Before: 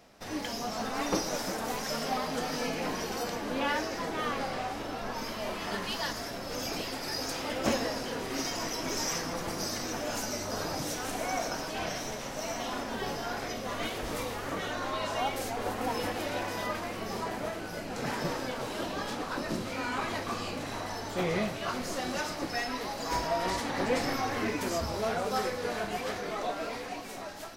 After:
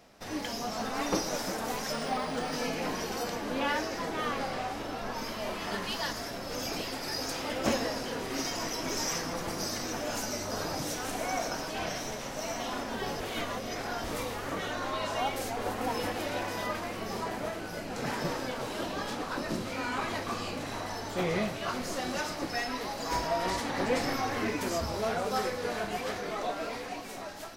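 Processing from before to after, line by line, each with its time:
0:01.92–0:02.53: linearly interpolated sample-rate reduction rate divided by 3×
0:13.20–0:14.04: reverse

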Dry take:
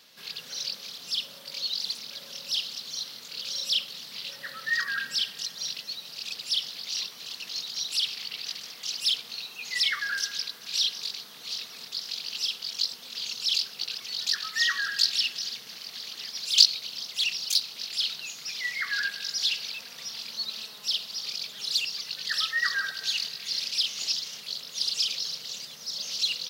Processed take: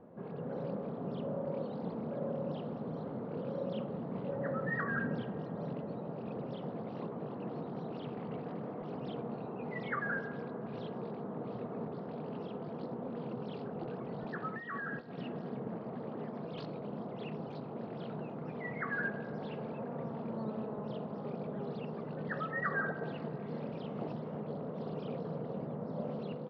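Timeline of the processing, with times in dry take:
0:14.54–0:15.18: downward compressor 4 to 1, threshold −30 dBFS
whole clip: Bessel low-pass filter 500 Hz, order 4; automatic gain control gain up to 4.5 dB; level +16.5 dB

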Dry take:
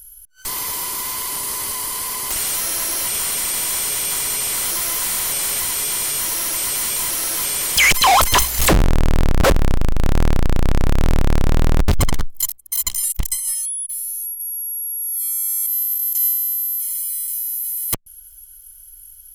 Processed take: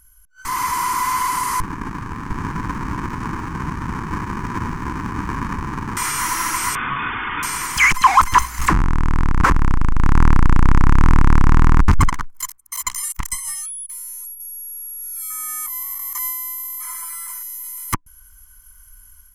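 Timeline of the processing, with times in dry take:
0:01.60–0:05.97: windowed peak hold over 65 samples
0:06.75–0:07.43: voice inversion scrambler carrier 3,500 Hz
0:12.08–0:13.33: low-shelf EQ 360 Hz −11.5 dB
0:15.30–0:17.43: flat-topped bell 780 Hz +10 dB 2.9 octaves
whole clip: drawn EQ curve 300 Hz 0 dB, 610 Hz −19 dB, 1,000 Hz +9 dB, 2,100 Hz +1 dB, 3,600 Hz −13 dB, 6,300 Hz −5 dB, 16,000 Hz −17 dB; automatic gain control gain up to 7 dB; level −1 dB

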